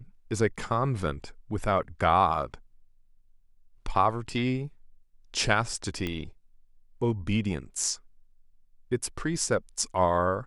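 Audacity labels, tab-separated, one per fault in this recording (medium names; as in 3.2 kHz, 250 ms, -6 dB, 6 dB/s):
6.070000	6.070000	pop -18 dBFS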